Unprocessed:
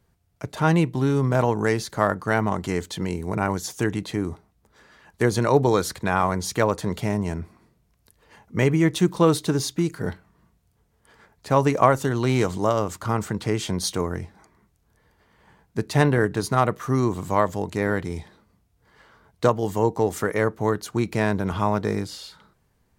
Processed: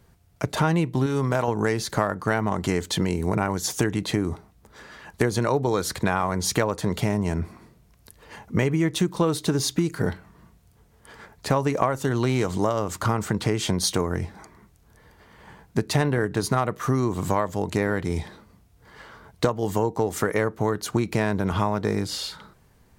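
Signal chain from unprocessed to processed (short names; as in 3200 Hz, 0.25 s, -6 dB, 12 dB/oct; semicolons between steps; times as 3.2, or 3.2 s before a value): 1.06–1.48 low shelf 470 Hz -7 dB; compressor 6:1, threshold -28 dBFS, peak gain reduction 16 dB; gain +8.5 dB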